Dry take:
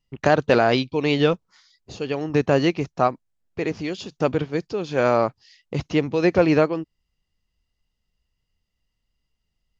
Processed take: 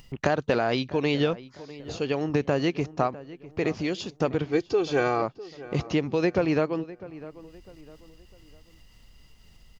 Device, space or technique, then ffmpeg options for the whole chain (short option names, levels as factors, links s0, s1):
upward and downward compression: -filter_complex "[0:a]acompressor=mode=upward:threshold=0.02:ratio=2.5,acompressor=threshold=0.0891:ratio=4,asettb=1/sr,asplit=3[s0][s1][s2];[s0]atrim=end=4.514[s3];[s1]atrim=start=4.51:end=5.22,asetpts=PTS-STARTPTS,afade=t=in:d=0.004:c=qsin,afade=t=out:st=0.706:d=0.004:c=qsin,aecho=1:1:2.6:0.77,atrim=end_sample=31311[s4];[s2]atrim=start=5.216[s5];[s3][s4]acrossfade=d=0.004:c1=hsin:c2=qsin[s6];[s6][s5]acrossfade=d=0.004:c1=qsin:c2=hsin,asplit=2[s7][s8];[s8]adelay=652,lowpass=f=2200:p=1,volume=0.141,asplit=2[s9][s10];[s10]adelay=652,lowpass=f=2200:p=1,volume=0.38,asplit=2[s11][s12];[s12]adelay=652,lowpass=f=2200:p=1,volume=0.38[s13];[s7][s9][s11][s13]amix=inputs=4:normalize=0"